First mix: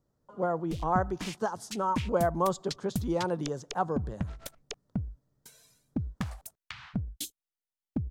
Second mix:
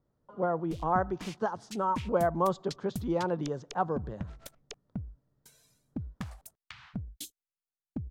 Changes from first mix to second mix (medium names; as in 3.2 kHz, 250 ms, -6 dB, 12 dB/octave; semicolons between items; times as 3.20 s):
speech: add low-pass 3.7 kHz 12 dB/octave; background -5.0 dB